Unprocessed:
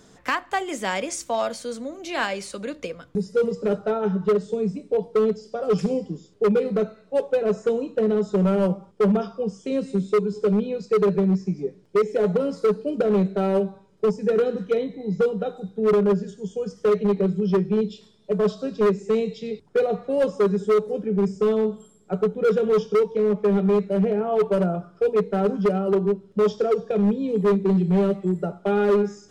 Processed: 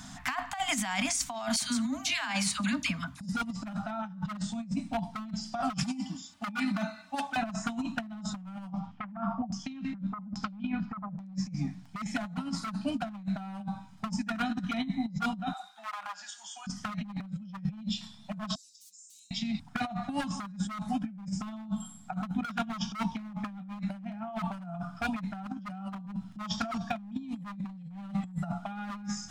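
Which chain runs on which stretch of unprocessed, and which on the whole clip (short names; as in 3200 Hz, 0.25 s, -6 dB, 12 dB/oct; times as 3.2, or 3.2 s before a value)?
1.56–3.33 HPF 60 Hz + notch 730 Hz, Q 5.5 + dispersion lows, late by 57 ms, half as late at 1400 Hz
5.83–7.36 HPF 140 Hz 6 dB/oct + low shelf 420 Hz -8 dB + comb 3.4 ms, depth 77%
8.69–11.33 LFO low-pass saw down 1.2 Hz 580–6300 Hz + high shelf 2500 Hz -9.5 dB + thin delay 75 ms, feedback 41%, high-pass 5300 Hz, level -5.5 dB
15.53–16.67 HPF 770 Hz 24 dB/oct + compressor 12:1, threshold -41 dBFS
18.55–19.31 inverse Chebyshev high-pass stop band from 1600 Hz, stop band 70 dB + compressor 3:1, threshold -59 dBFS
whole clip: elliptic band-stop 260–710 Hz, stop band 40 dB; limiter -24 dBFS; negative-ratio compressor -36 dBFS, ratio -0.5; gain +3 dB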